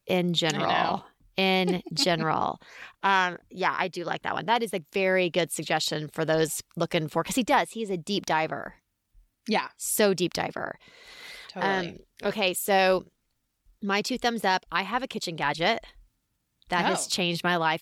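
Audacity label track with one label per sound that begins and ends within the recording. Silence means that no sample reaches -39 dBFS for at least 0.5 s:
9.470000	13.010000	sound
13.830000	15.890000	sound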